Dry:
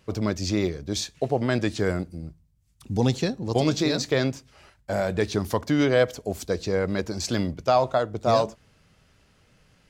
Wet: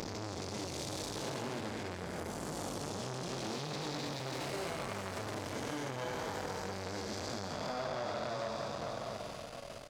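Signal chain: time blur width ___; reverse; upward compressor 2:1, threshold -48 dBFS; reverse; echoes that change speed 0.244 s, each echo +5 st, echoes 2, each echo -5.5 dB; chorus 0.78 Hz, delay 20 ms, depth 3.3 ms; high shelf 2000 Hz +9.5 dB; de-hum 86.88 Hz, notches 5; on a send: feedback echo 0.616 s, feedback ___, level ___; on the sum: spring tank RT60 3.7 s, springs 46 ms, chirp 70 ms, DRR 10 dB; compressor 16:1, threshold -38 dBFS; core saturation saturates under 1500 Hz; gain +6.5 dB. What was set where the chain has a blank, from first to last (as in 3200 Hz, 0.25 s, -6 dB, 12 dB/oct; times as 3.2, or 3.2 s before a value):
0.668 s, 51%, -17.5 dB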